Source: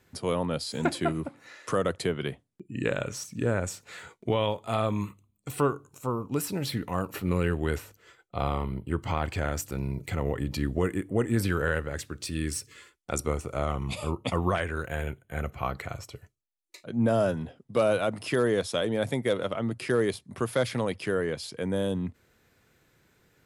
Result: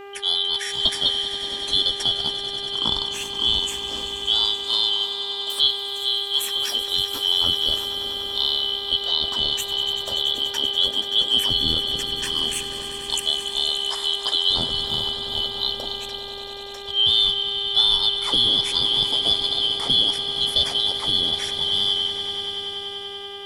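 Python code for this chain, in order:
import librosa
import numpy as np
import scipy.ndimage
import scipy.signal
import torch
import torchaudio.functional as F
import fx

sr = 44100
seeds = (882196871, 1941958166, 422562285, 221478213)

y = fx.band_shuffle(x, sr, order='2413')
y = fx.echo_swell(y, sr, ms=96, loudest=5, wet_db=-14)
y = fx.dmg_buzz(y, sr, base_hz=400.0, harmonics=7, level_db=-44.0, tilt_db=-6, odd_only=False)
y = fx.low_shelf(y, sr, hz=76.0, db=-11.0, at=(4.52, 6.74))
y = y * librosa.db_to_amplitude(5.0)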